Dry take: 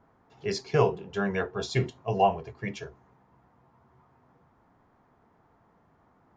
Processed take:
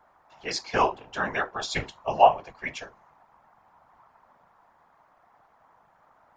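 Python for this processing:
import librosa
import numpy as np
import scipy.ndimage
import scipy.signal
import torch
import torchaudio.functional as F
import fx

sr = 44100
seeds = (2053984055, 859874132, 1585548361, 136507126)

y = fx.low_shelf_res(x, sr, hz=520.0, db=-12.0, q=1.5)
y = fx.whisperise(y, sr, seeds[0])
y = F.gain(torch.from_numpy(y), 4.5).numpy()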